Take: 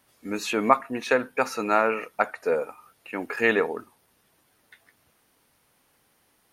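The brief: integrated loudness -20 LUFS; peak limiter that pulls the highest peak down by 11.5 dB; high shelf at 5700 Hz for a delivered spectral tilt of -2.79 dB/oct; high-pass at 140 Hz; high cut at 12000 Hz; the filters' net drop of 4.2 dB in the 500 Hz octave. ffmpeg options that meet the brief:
-af "highpass=140,lowpass=12k,equalizer=f=500:t=o:g=-5,highshelf=f=5.7k:g=6.5,volume=11dB,alimiter=limit=-5dB:level=0:latency=1"

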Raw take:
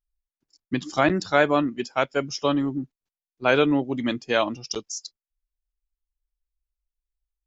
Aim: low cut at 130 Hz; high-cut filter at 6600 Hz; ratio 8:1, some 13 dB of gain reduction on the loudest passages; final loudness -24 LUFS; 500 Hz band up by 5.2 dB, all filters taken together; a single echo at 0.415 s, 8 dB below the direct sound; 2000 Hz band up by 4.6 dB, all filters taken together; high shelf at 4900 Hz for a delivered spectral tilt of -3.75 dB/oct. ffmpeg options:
-af "highpass=130,lowpass=6.6k,equalizer=f=500:t=o:g=6,equalizer=f=2k:t=o:g=5.5,highshelf=f=4.9k:g=3.5,acompressor=threshold=-23dB:ratio=8,aecho=1:1:415:0.398,volume=5dB"

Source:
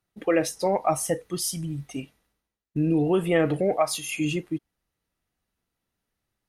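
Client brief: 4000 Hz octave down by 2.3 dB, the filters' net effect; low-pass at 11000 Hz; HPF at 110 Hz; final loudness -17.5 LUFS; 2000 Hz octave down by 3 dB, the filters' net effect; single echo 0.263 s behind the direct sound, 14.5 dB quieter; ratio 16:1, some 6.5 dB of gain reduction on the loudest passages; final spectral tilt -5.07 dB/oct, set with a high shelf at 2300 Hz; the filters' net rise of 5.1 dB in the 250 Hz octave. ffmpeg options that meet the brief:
-af "highpass=110,lowpass=11k,equalizer=f=250:t=o:g=8,equalizer=f=2k:t=o:g=-4.5,highshelf=f=2.3k:g=6,equalizer=f=4k:t=o:g=-8.5,acompressor=threshold=-20dB:ratio=16,aecho=1:1:263:0.188,volume=9.5dB"

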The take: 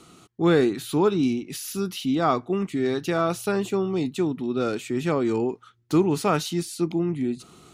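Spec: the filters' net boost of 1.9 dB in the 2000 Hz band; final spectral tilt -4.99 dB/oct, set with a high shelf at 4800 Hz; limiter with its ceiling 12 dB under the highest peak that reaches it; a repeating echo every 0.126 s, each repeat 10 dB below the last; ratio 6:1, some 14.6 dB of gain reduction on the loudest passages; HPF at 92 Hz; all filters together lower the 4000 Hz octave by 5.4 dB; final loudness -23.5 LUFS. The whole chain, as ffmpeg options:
-af "highpass=92,equalizer=f=2k:t=o:g=5,equalizer=f=4k:t=o:g=-4.5,highshelf=f=4.8k:g=-8.5,acompressor=threshold=-31dB:ratio=6,alimiter=level_in=8.5dB:limit=-24dB:level=0:latency=1,volume=-8.5dB,aecho=1:1:126|252|378|504:0.316|0.101|0.0324|0.0104,volume=17dB"

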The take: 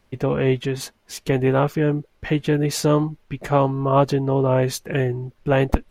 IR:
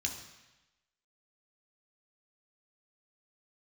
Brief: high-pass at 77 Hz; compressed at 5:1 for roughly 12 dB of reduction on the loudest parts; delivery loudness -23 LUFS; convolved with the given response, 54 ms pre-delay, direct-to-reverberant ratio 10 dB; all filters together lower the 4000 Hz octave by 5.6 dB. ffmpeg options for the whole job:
-filter_complex "[0:a]highpass=77,equalizer=f=4k:t=o:g=-7.5,acompressor=threshold=-25dB:ratio=5,asplit=2[a][b];[1:a]atrim=start_sample=2205,adelay=54[c];[b][c]afir=irnorm=-1:irlink=0,volume=-12.5dB[d];[a][d]amix=inputs=2:normalize=0,volume=6.5dB"

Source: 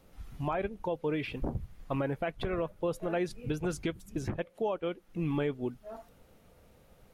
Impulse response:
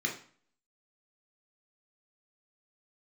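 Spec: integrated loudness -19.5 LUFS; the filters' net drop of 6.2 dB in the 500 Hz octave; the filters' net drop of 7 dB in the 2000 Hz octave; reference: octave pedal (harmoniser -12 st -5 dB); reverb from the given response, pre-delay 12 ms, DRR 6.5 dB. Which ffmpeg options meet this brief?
-filter_complex "[0:a]equalizer=f=500:t=o:g=-7.5,equalizer=f=2k:t=o:g=-9,asplit=2[a][b];[1:a]atrim=start_sample=2205,adelay=12[c];[b][c]afir=irnorm=-1:irlink=0,volume=-12.5dB[d];[a][d]amix=inputs=2:normalize=0,asplit=2[e][f];[f]asetrate=22050,aresample=44100,atempo=2,volume=-5dB[g];[e][g]amix=inputs=2:normalize=0,volume=17dB"

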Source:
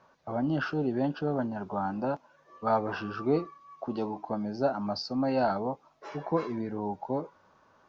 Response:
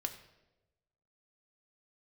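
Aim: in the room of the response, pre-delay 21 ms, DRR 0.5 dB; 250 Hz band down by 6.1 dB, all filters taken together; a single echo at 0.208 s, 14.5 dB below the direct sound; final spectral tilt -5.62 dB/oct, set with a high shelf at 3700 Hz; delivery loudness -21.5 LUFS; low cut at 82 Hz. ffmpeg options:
-filter_complex "[0:a]highpass=82,equalizer=f=250:t=o:g=-7.5,highshelf=f=3.7k:g=-8.5,aecho=1:1:208:0.188,asplit=2[a][b];[1:a]atrim=start_sample=2205,adelay=21[c];[b][c]afir=irnorm=-1:irlink=0,volume=-0.5dB[d];[a][d]amix=inputs=2:normalize=0,volume=10dB"

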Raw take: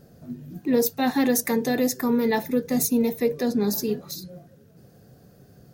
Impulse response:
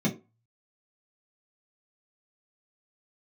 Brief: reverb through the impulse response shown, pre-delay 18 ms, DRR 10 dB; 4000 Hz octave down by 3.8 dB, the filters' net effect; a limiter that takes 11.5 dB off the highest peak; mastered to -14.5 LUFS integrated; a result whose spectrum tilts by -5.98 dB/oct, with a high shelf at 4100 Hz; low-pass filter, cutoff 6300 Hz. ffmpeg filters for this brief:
-filter_complex "[0:a]lowpass=6.3k,equalizer=f=4k:t=o:g=-8,highshelf=f=4.1k:g=6.5,alimiter=limit=-22dB:level=0:latency=1,asplit=2[a][b];[1:a]atrim=start_sample=2205,adelay=18[c];[b][c]afir=irnorm=-1:irlink=0,volume=-18.5dB[d];[a][d]amix=inputs=2:normalize=0,volume=11dB"

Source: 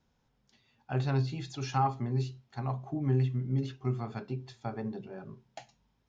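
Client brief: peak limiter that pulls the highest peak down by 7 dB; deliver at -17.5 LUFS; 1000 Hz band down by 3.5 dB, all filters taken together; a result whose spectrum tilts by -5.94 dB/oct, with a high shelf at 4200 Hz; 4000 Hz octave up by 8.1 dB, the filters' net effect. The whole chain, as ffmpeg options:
-af "equalizer=f=1k:t=o:g=-5.5,equalizer=f=4k:t=o:g=6,highshelf=f=4.2k:g=7,volume=18.5dB,alimiter=limit=-6.5dB:level=0:latency=1"

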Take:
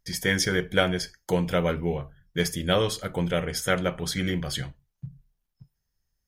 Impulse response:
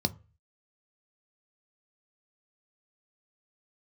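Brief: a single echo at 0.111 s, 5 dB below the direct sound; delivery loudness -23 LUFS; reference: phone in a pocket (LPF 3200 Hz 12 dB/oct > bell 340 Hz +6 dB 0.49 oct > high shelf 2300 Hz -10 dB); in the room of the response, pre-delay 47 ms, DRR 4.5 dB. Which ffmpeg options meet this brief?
-filter_complex "[0:a]aecho=1:1:111:0.562,asplit=2[a][b];[1:a]atrim=start_sample=2205,adelay=47[c];[b][c]afir=irnorm=-1:irlink=0,volume=-10.5dB[d];[a][d]amix=inputs=2:normalize=0,lowpass=3.2k,equalizer=f=340:t=o:w=0.49:g=6,highshelf=f=2.3k:g=-10,volume=-1.5dB"

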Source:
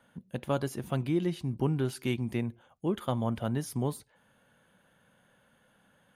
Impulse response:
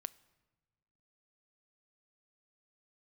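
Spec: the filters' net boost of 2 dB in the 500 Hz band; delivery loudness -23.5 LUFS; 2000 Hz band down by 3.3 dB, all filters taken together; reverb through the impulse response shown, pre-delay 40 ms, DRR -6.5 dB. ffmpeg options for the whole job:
-filter_complex "[0:a]equalizer=f=500:t=o:g=3,equalizer=f=2k:t=o:g=-4.5,asplit=2[a][b];[1:a]atrim=start_sample=2205,adelay=40[c];[b][c]afir=irnorm=-1:irlink=0,volume=10dB[d];[a][d]amix=inputs=2:normalize=0,volume=1dB"

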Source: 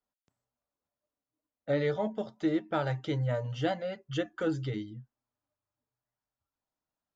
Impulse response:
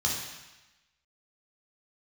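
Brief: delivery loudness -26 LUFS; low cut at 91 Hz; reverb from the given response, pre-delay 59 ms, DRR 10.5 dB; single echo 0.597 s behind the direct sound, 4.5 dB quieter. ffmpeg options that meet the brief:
-filter_complex "[0:a]highpass=91,aecho=1:1:597:0.596,asplit=2[a][b];[1:a]atrim=start_sample=2205,adelay=59[c];[b][c]afir=irnorm=-1:irlink=0,volume=-19dB[d];[a][d]amix=inputs=2:normalize=0,volume=5.5dB"

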